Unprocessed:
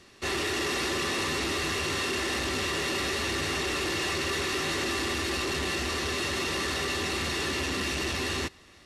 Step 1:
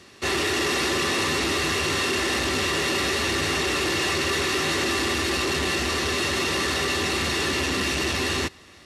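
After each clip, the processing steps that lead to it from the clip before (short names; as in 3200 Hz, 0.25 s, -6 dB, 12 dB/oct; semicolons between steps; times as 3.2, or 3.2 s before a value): HPF 58 Hz; gain +5.5 dB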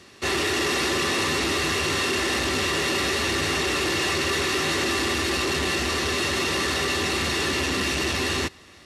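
nothing audible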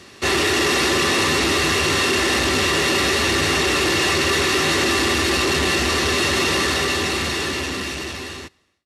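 ending faded out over 2.36 s; gain +5.5 dB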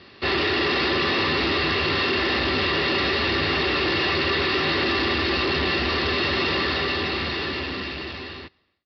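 downsampling 11025 Hz; gain -3.5 dB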